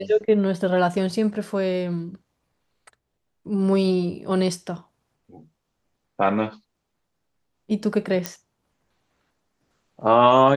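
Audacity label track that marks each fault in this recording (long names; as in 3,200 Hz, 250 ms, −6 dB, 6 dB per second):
8.260000	8.260000	click −9 dBFS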